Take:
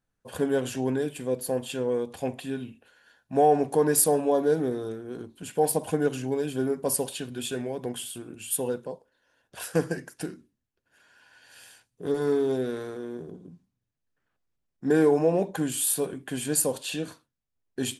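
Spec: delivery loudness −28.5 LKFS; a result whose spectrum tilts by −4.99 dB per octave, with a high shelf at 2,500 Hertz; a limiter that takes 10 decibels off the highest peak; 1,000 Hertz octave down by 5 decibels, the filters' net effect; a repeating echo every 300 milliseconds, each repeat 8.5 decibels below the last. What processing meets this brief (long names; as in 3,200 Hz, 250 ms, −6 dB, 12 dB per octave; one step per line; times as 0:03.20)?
parametric band 1,000 Hz −7.5 dB
high-shelf EQ 2,500 Hz −5.5 dB
brickwall limiter −22.5 dBFS
repeating echo 300 ms, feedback 38%, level −8.5 dB
level +4.5 dB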